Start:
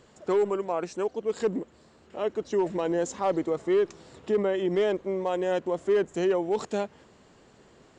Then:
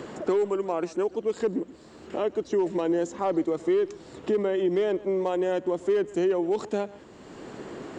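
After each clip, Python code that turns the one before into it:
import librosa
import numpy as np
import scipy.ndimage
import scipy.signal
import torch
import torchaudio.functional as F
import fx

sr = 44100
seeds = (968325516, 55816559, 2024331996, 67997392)

y = fx.peak_eq(x, sr, hz=320.0, db=6.5, octaves=0.58)
y = y + 10.0 ** (-21.0 / 20.0) * np.pad(y, (int(129 * sr / 1000.0), 0))[:len(y)]
y = fx.band_squash(y, sr, depth_pct=70)
y = y * librosa.db_to_amplitude(-2.0)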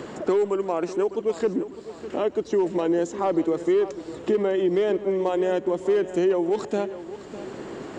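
y = fx.echo_feedback(x, sr, ms=603, feedback_pct=43, wet_db=-14)
y = y * librosa.db_to_amplitude(2.5)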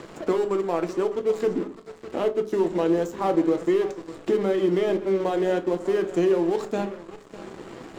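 y = np.sign(x) * np.maximum(np.abs(x) - 10.0 ** (-39.0 / 20.0), 0.0)
y = fx.room_shoebox(y, sr, seeds[0], volume_m3=170.0, walls='furnished', distance_m=0.69)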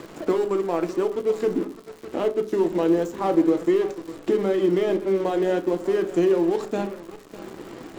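y = fx.peak_eq(x, sr, hz=300.0, db=4.0, octaves=0.44)
y = fx.dmg_crackle(y, sr, seeds[1], per_s=170.0, level_db=-37.0)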